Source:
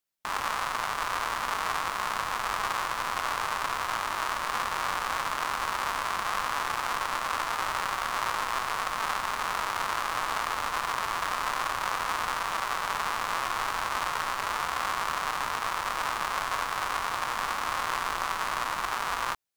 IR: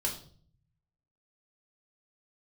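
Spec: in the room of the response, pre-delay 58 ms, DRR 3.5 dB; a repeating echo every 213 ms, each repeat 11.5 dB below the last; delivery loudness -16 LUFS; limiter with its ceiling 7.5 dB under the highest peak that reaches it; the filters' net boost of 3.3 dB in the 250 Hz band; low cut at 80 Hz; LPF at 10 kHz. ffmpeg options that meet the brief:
-filter_complex "[0:a]highpass=80,lowpass=10000,equalizer=f=250:t=o:g=4.5,alimiter=limit=0.0944:level=0:latency=1,aecho=1:1:213|426|639:0.266|0.0718|0.0194,asplit=2[s0][s1];[1:a]atrim=start_sample=2205,adelay=58[s2];[s1][s2]afir=irnorm=-1:irlink=0,volume=0.422[s3];[s0][s3]amix=inputs=2:normalize=0,volume=5.96"

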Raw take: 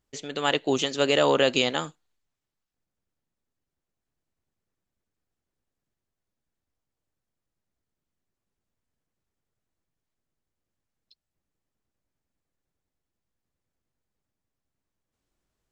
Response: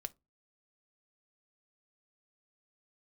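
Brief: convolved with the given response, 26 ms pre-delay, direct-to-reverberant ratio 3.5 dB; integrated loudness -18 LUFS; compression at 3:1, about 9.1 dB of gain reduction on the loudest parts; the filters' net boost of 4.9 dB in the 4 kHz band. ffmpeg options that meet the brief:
-filter_complex "[0:a]equalizer=f=4000:t=o:g=7,acompressor=threshold=0.0398:ratio=3,asplit=2[s0][s1];[1:a]atrim=start_sample=2205,adelay=26[s2];[s1][s2]afir=irnorm=-1:irlink=0,volume=0.944[s3];[s0][s3]amix=inputs=2:normalize=0,volume=3.35"

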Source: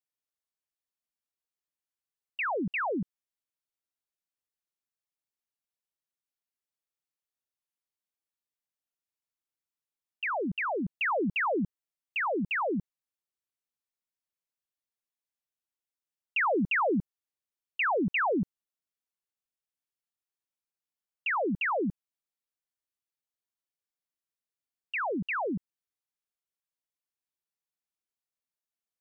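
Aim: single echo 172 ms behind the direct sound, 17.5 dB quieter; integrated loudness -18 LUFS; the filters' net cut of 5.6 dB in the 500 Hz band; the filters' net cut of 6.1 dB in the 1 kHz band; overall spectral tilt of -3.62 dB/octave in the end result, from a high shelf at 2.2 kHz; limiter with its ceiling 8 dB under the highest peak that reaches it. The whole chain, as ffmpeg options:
-af "equalizer=f=500:t=o:g=-5.5,equalizer=f=1000:t=o:g=-8,highshelf=f=2200:g=6.5,alimiter=level_in=1.5:limit=0.0631:level=0:latency=1,volume=0.668,aecho=1:1:172:0.133,volume=6.31"

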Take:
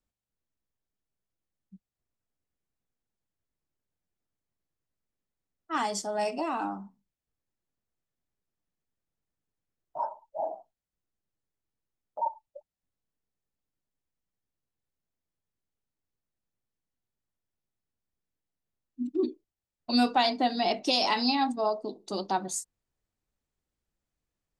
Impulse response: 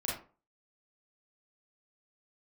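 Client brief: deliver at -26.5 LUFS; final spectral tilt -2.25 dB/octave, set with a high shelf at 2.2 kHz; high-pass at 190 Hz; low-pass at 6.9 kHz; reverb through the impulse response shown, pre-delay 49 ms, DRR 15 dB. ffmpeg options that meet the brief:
-filter_complex "[0:a]highpass=190,lowpass=6900,highshelf=f=2200:g=3.5,asplit=2[s0][s1];[1:a]atrim=start_sample=2205,adelay=49[s2];[s1][s2]afir=irnorm=-1:irlink=0,volume=0.112[s3];[s0][s3]amix=inputs=2:normalize=0,volume=1.26"

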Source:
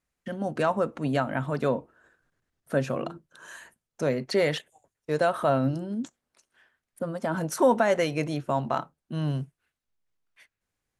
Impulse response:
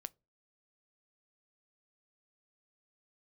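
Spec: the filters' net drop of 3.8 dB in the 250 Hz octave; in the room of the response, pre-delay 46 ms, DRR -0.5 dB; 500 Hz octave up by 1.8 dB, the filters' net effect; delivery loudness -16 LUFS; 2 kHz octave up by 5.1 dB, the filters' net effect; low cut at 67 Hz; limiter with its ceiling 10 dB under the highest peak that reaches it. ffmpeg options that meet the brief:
-filter_complex "[0:a]highpass=67,equalizer=f=250:t=o:g=-6,equalizer=f=500:t=o:g=3,equalizer=f=2000:t=o:g=6.5,alimiter=limit=0.119:level=0:latency=1,asplit=2[s0][s1];[1:a]atrim=start_sample=2205,adelay=46[s2];[s1][s2]afir=irnorm=-1:irlink=0,volume=1.78[s3];[s0][s3]amix=inputs=2:normalize=0,volume=3.76"

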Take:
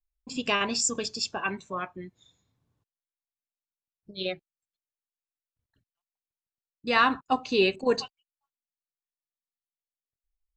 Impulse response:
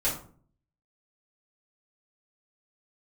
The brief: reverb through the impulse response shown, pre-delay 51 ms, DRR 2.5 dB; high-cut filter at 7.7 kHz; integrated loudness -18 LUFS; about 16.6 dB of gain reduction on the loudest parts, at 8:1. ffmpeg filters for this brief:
-filter_complex "[0:a]lowpass=7700,acompressor=threshold=0.0178:ratio=8,asplit=2[s0][s1];[1:a]atrim=start_sample=2205,adelay=51[s2];[s1][s2]afir=irnorm=-1:irlink=0,volume=0.266[s3];[s0][s3]amix=inputs=2:normalize=0,volume=10"

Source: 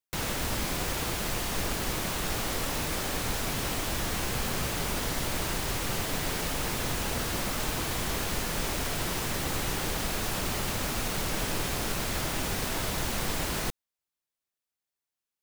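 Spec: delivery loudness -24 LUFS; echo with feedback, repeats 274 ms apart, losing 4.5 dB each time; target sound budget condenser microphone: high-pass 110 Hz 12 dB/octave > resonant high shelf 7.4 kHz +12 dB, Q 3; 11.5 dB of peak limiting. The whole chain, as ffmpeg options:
-af "alimiter=level_in=1.68:limit=0.0631:level=0:latency=1,volume=0.596,highpass=110,highshelf=f=7400:t=q:w=3:g=12,aecho=1:1:274|548|822|1096|1370|1644|1918|2192|2466:0.596|0.357|0.214|0.129|0.0772|0.0463|0.0278|0.0167|0.01,volume=1.19"

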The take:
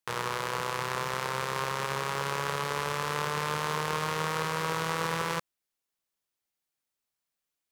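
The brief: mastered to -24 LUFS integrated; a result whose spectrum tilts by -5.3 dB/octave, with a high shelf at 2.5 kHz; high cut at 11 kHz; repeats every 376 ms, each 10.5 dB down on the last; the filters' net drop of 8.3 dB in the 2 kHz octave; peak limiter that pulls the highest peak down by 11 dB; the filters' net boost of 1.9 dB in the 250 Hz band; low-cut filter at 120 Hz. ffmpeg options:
-af "highpass=120,lowpass=11000,equalizer=f=250:t=o:g=5.5,equalizer=f=2000:t=o:g=-8,highshelf=f=2500:g=-7.5,alimiter=level_in=2.11:limit=0.0631:level=0:latency=1,volume=0.473,aecho=1:1:376|752|1128:0.299|0.0896|0.0269,volume=7.08"

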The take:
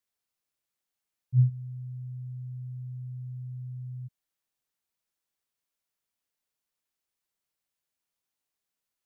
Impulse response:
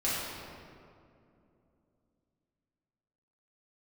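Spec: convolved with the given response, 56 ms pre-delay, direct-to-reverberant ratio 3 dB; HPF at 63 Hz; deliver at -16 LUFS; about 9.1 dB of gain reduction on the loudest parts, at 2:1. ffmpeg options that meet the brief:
-filter_complex "[0:a]highpass=63,acompressor=threshold=0.02:ratio=2,asplit=2[s0][s1];[1:a]atrim=start_sample=2205,adelay=56[s2];[s1][s2]afir=irnorm=-1:irlink=0,volume=0.251[s3];[s0][s3]amix=inputs=2:normalize=0,volume=10.6"

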